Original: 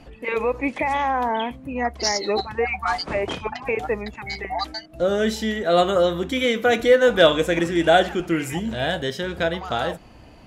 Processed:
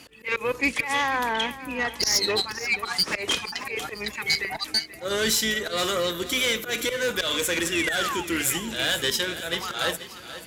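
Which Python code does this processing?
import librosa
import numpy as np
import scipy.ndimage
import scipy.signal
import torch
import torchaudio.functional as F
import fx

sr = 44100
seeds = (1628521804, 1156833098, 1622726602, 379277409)

p1 = fx.octave_divider(x, sr, octaves=2, level_db=-5.0)
p2 = fx.auto_swell(p1, sr, attack_ms=148.0)
p3 = fx.riaa(p2, sr, side='recording')
p4 = fx.tube_stage(p3, sr, drive_db=18.0, bias=0.45)
p5 = fx.spec_paint(p4, sr, seeds[0], shape='fall', start_s=7.72, length_s=0.52, low_hz=810.0, high_hz=2900.0, level_db=-30.0)
p6 = fx.level_steps(p5, sr, step_db=10)
p7 = p5 + (p6 * 10.0 ** (-1.5 / 20.0))
p8 = scipy.signal.sosfilt(scipy.signal.butter(2, 52.0, 'highpass', fs=sr, output='sos'), p7)
p9 = fx.peak_eq(p8, sr, hz=730.0, db=-10.0, octaves=0.74)
p10 = p9 + fx.echo_feedback(p9, sr, ms=484, feedback_pct=43, wet_db=-14.5, dry=0)
y = fx.rider(p10, sr, range_db=3, speed_s=2.0)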